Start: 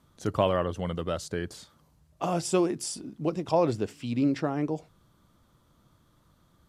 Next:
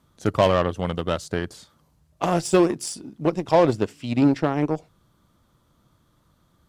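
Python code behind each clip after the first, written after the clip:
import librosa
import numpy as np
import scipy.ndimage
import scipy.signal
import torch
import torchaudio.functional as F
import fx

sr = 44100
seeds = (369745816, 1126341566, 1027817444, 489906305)

y = 10.0 ** (-13.5 / 20.0) * np.tanh(x / 10.0 ** (-13.5 / 20.0))
y = fx.cheby_harmonics(y, sr, harmonics=(7,), levels_db=(-22,), full_scale_db=-14.0)
y = F.gain(torch.from_numpy(y), 8.0).numpy()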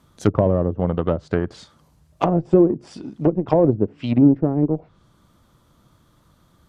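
y = fx.env_lowpass_down(x, sr, base_hz=430.0, full_db=-18.5)
y = F.gain(torch.from_numpy(y), 5.5).numpy()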